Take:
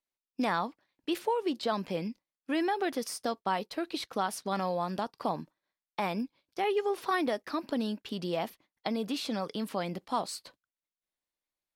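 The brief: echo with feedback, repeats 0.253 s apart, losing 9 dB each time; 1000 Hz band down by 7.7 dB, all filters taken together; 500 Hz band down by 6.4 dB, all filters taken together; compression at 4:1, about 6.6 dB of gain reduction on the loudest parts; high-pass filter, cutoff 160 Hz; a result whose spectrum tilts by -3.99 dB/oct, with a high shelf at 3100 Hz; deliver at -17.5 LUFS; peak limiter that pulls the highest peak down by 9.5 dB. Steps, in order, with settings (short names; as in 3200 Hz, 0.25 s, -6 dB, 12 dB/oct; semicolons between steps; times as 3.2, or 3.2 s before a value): HPF 160 Hz; bell 500 Hz -6.5 dB; bell 1000 Hz -8.5 dB; high shelf 3100 Hz +7.5 dB; compressor 4:1, threshold -37 dBFS; limiter -30.5 dBFS; feedback echo 0.253 s, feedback 35%, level -9 dB; gain +24 dB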